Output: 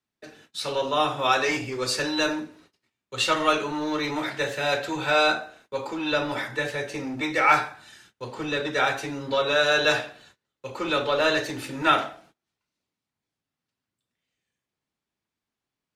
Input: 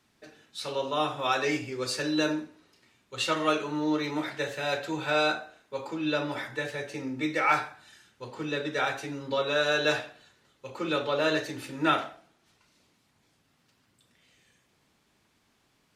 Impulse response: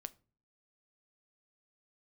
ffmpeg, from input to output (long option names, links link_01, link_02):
-filter_complex "[0:a]agate=range=-24dB:threshold=-59dB:ratio=16:detection=peak,acrossover=split=500|2000[link_01][link_02][link_03];[link_01]asoftclip=type=hard:threshold=-36dB[link_04];[link_04][link_02][link_03]amix=inputs=3:normalize=0,volume=5.5dB"